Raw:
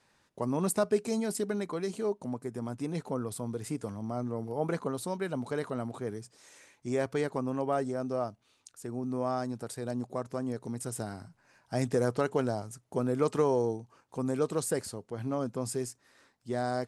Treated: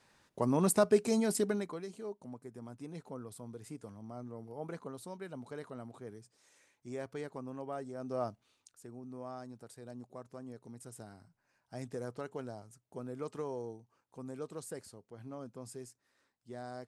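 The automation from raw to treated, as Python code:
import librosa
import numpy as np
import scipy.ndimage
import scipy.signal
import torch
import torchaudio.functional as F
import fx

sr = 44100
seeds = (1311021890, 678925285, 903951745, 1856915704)

y = fx.gain(x, sr, db=fx.line((1.46, 1.0), (1.89, -11.0), (7.9, -11.0), (8.29, -1.0), (9.0, -13.0)))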